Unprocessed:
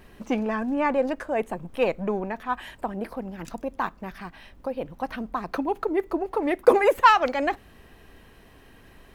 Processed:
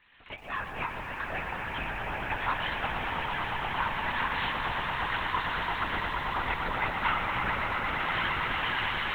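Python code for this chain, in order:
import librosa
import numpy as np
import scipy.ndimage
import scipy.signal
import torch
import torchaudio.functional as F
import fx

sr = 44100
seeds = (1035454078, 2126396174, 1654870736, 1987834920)

y = fx.spec_quant(x, sr, step_db=15)
y = fx.recorder_agc(y, sr, target_db=-9.0, rise_db_per_s=35.0, max_gain_db=30)
y = scipy.signal.sosfilt(scipy.signal.butter(2, 1500.0, 'highpass', fs=sr, output='sos'), y)
y = 10.0 ** (-19.5 / 20.0) * np.tanh(y / 10.0 ** (-19.5 / 20.0))
y = fx.tremolo_random(y, sr, seeds[0], hz=3.5, depth_pct=55)
y = fx.echo_swell(y, sr, ms=114, loudest=8, wet_db=-8)
y = fx.lpc_vocoder(y, sr, seeds[1], excitation='whisper', order=10)
y = fx.echo_crushed(y, sr, ms=120, feedback_pct=80, bits=9, wet_db=-10)
y = y * 10.0 ** (-2.0 / 20.0)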